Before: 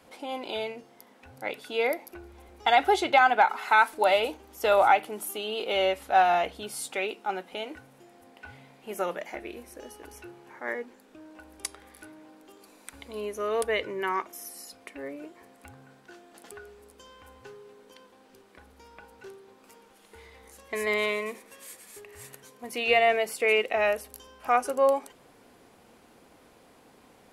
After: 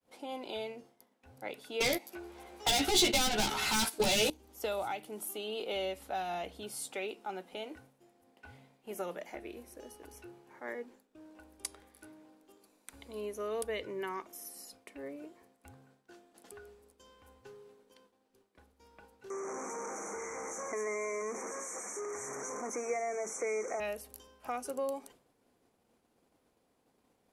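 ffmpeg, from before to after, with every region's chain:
-filter_complex "[0:a]asettb=1/sr,asplit=3[a][b][c];[a]atrim=end=1.804[d];[b]atrim=start=1.8:end=4.3,asetpts=PTS-STARTPTS,afade=t=in:d=0.004:c=qsin,afade=t=out:st=2.496:d=0.004:c=qsin,asplit=2[e][f];[f]highpass=f=720:p=1,volume=28dB,asoftclip=type=tanh:threshold=-7.5dB[g];[e][g]amix=inputs=2:normalize=0,lowpass=f=5.9k:p=1,volume=-6dB,asplit=2[h][i];[i]adelay=14,volume=-3dB[j];[h][j]amix=inputs=2:normalize=0,atrim=end_sample=110250,agate=range=-12dB:threshold=-20dB:ratio=16:release=100:detection=peak[k];[c]atrim=start=4.296[l];[d][k]acrossfade=d=0.004:c1=hsin:c2=qsin[m];[m][l]acrossfade=d=0.004:c1=qsin:c2=hsin,asettb=1/sr,asplit=3[n][o][p];[n]atrim=end=19.304[q];[o]atrim=start=19.3:end=23.8,asetpts=PTS-STARTPTS,afade=t=in:d=0.004:c=qsin,afade=t=out:st=4.496:d=0.004:c=qsin,aeval=exprs='val(0)+0.5*0.0447*sgn(val(0))':c=same,asuperstop=centerf=3700:order=20:qfactor=1.1,highpass=310,equalizer=f=1.2k:t=q:w=4:g=5,equalizer=f=1.8k:t=q:w=4:g=-4,equalizer=f=2.7k:t=q:w=4:g=-7,equalizer=f=6.1k:t=q:w=4:g=6,lowpass=f=7.3k:w=0.5412,lowpass=f=7.3k:w=1.3066[r];[p]atrim=start=23.796[s];[q][r]acrossfade=d=0.004:c1=hsin:c2=qsin[t];[t][s]acrossfade=d=0.004:c1=qsin:c2=hsin,acrossover=split=310|3000[u][v][w];[v]acompressor=threshold=-29dB:ratio=6[x];[u][x][w]amix=inputs=3:normalize=0,agate=range=-33dB:threshold=-48dB:ratio=3:detection=peak,equalizer=f=1.8k:w=0.58:g=-4.5,volume=-4.5dB"

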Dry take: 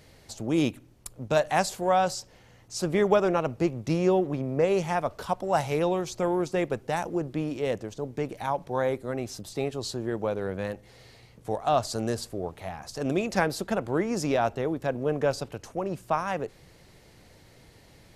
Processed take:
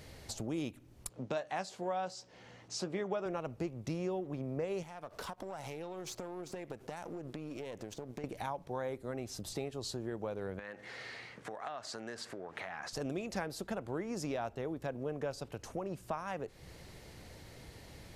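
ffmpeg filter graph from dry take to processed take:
-filter_complex "[0:a]asettb=1/sr,asplit=3[a][b][c];[a]atrim=end=1.094[d];[b]atrim=start=1.09:end=3.26,asetpts=PTS-STARTPTS,afade=t=in:d=0.004:c=qsin,afade=t=out:st=2.166:d=0.004:c=qsin,highpass=160,lowpass=6k,asplit=2[e][f];[f]adelay=16,volume=-11.5dB[g];[e][g]amix=inputs=2:normalize=0,atrim=end_sample=95697[h];[c]atrim=start=3.256[i];[d][h]acrossfade=d=0.004:c1=hsin:c2=qsin[j];[j][i]acrossfade=d=0.004:c1=qsin:c2=hsin,asettb=1/sr,asplit=3[k][l][m];[k]atrim=end=4.834[n];[l]atrim=start=4.83:end=8.24,asetpts=PTS-STARTPTS,afade=t=in:d=0.004:c=qsin,afade=t=out:st=3.406:d=0.004:c=qsin,aeval=exprs='if(lt(val(0),0),0.447*val(0),val(0))':c=same,lowshelf=f=100:g=-11.5,acompressor=threshold=-37dB:ratio=8:attack=3.2:release=140:knee=1:detection=peak[o];[m]atrim=start=8.236[p];[n][o]acrossfade=d=0.004:c1=hsin:c2=qsin[q];[q][p]acrossfade=d=0.004:c1=qsin:c2=hsin,asettb=1/sr,asplit=3[r][s][t];[r]atrim=end=10.594[u];[s]atrim=start=10.59:end=12.93,asetpts=PTS-STARTPTS,afade=t=in:d=0.004:c=qsin,afade=t=out:st=2.336:d=0.004:c=qsin,acompressor=threshold=-41dB:ratio=5:attack=3.2:release=140:knee=1:detection=peak,highpass=190,lowpass=7.8k,equalizer=f=1.7k:t=o:w=1.3:g=12.5[v];[t]atrim=start=12.926[w];[u][v]acrossfade=d=0.004:c1=hsin:c2=qsin[x];[x][w]acrossfade=d=0.004:c1=qsin:c2=hsin,equalizer=f=68:t=o:w=0.37:g=6,acompressor=threshold=-41dB:ratio=3,volume=1.5dB"

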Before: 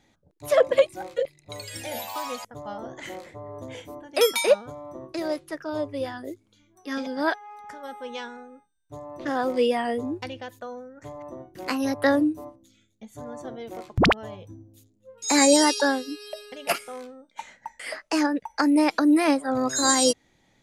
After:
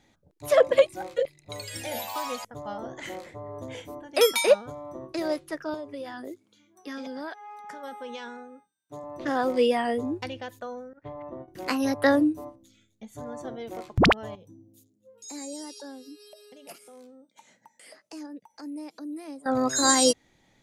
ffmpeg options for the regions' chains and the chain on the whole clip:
-filter_complex "[0:a]asettb=1/sr,asplit=3[a][b][c];[a]atrim=end=5.744[d];[b]atrim=start=5.74:end=9.04,asetpts=PTS-STARTPTS,afade=t=in:d=0.004:c=qsin,afade=t=out:st=3.296:d=0.004:c=qsin,highpass=f=140:w=0.5412,highpass=f=140:w=1.3066,acompressor=threshold=-33dB:ratio=6:attack=3.2:release=140:knee=1:detection=peak[e];[c]atrim=start=9.036[f];[d][e]acrossfade=d=0.004:c1=hsin:c2=qsin[g];[g][f]acrossfade=d=0.004:c1=qsin:c2=hsin,asettb=1/sr,asplit=3[h][i][j];[h]atrim=end=10.934[k];[i]atrim=start=10.93:end=11.48,asetpts=PTS-STARTPTS,afade=t=in:d=0.004:c=qsin,afade=t=out:st=0.546:d=0.004:c=qsin,lowpass=f=3.4k:w=0.5412,lowpass=f=3.4k:w=1.3066,agate=range=-33dB:threshold=-41dB:ratio=3:release=100:detection=peak[l];[j]atrim=start=11.476[m];[k][l]acrossfade=d=0.004:c1=hsin:c2=qsin[n];[n][m]acrossfade=d=0.004:c1=qsin:c2=hsin,asettb=1/sr,asplit=3[o][p][q];[o]atrim=end=14.354[r];[p]atrim=start=14.35:end=19.46,asetpts=PTS-STARTPTS,afade=t=in:d=0.004:c=qsin,afade=t=out:st=5.106:d=0.004:c=qsin,highpass=f=130:w=0.5412,highpass=f=130:w=1.3066,acompressor=threshold=-46dB:ratio=2:attack=3.2:release=140:knee=1:detection=peak,equalizer=f=1.6k:w=0.49:g=-12[s];[q]atrim=start=19.456[t];[r][s]acrossfade=d=0.004:c1=hsin:c2=qsin[u];[u][t]acrossfade=d=0.004:c1=qsin:c2=hsin"

